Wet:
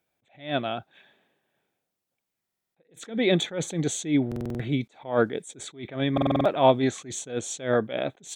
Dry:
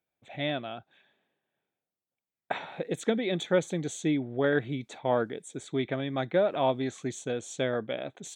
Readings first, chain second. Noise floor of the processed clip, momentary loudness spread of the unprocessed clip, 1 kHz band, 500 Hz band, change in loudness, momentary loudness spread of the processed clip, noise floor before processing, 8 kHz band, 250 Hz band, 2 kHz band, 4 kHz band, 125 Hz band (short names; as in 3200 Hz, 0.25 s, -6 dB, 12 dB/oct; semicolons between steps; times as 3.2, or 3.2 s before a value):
-84 dBFS, 10 LU, +5.0 dB, +2.5 dB, +4.0 dB, 15 LU, under -85 dBFS, +7.5 dB, +4.5 dB, +1.0 dB, +5.0 dB, +5.0 dB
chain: stuck buffer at 2.44/4.27/6.13, samples 2048, times 6; attack slew limiter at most 160 dB/s; gain +8.5 dB